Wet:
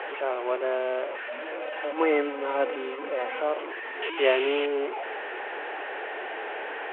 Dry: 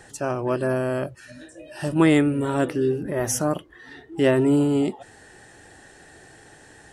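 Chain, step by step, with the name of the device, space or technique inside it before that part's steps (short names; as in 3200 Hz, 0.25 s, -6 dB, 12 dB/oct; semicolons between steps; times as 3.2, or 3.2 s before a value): digital answering machine (BPF 400–3200 Hz; delta modulation 16 kbps, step -25.5 dBFS; speaker cabinet 380–3600 Hz, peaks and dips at 430 Hz +5 dB, 1200 Hz -4 dB, 1800 Hz -5 dB); three-band isolator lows -23 dB, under 290 Hz, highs -17 dB, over 3300 Hz; 1.62–3.4 comb 3.9 ms; 4.02–4.66 bell 3000 Hz +13.5 dB 1.3 oct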